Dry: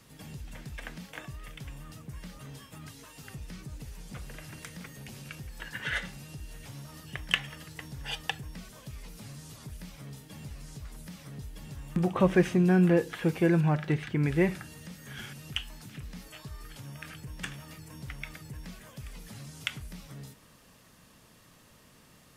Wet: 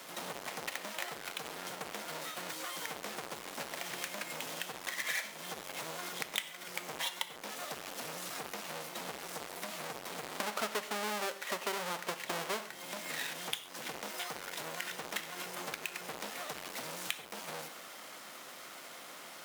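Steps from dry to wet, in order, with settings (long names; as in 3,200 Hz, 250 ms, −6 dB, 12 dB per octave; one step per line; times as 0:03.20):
each half-wave held at its own peak
high-pass filter 510 Hz 12 dB per octave
downward compressor 4 to 1, threshold −44 dBFS, peak gain reduction 22.5 dB
change of speed 1.15×
on a send: convolution reverb, pre-delay 3 ms, DRR 11 dB
on the sum: level +8 dB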